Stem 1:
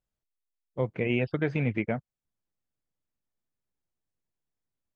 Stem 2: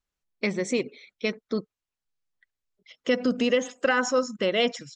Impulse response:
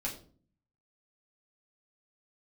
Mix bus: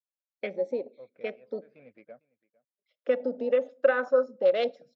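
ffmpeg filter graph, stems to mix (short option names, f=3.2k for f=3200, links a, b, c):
-filter_complex "[0:a]aeval=exprs='0.237*(cos(1*acos(clip(val(0)/0.237,-1,1)))-cos(1*PI/2))+0.00668*(cos(6*acos(clip(val(0)/0.237,-1,1)))-cos(6*PI/2))':c=same,adelay=200,volume=-19dB,asplit=2[a][b];[b]volume=-23dB[c];[1:a]afwtdn=0.0316,highpass=180,volume=-3dB,asplit=3[d][e][f];[e]volume=-20.5dB[g];[f]apad=whole_len=227373[h];[a][h]sidechaincompress=threshold=-44dB:ratio=8:attack=6.7:release=183[i];[2:a]atrim=start_sample=2205[j];[g][j]afir=irnorm=-1:irlink=0[k];[c]aecho=0:1:453:1[l];[i][d][k][l]amix=inputs=4:normalize=0,highpass=360,equalizer=f=370:t=q:w=4:g=-6,equalizer=f=560:t=q:w=4:g=10,equalizer=f=910:t=q:w=4:g=-10,equalizer=f=2k:t=q:w=4:g=-7,equalizer=f=3k:t=q:w=4:g=-10,lowpass=f=4.3k:w=0.5412,lowpass=f=4.3k:w=1.3066"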